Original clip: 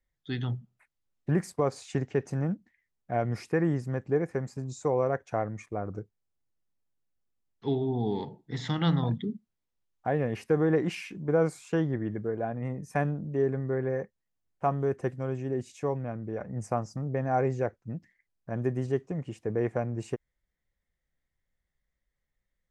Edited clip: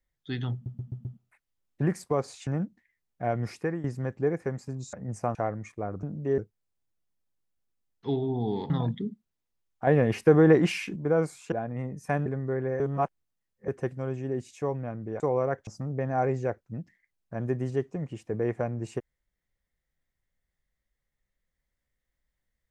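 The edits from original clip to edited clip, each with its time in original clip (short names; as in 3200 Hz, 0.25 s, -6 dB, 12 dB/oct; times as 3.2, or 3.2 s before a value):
0.53 stutter 0.13 s, 5 plays
1.95–2.36 cut
3.46–3.73 fade out, to -14.5 dB
4.82–5.29 swap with 16.41–16.83
8.29–8.93 cut
10.1–11.19 gain +6.5 dB
11.75–12.38 cut
13.12–13.47 move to 5.97
14.01–14.89 reverse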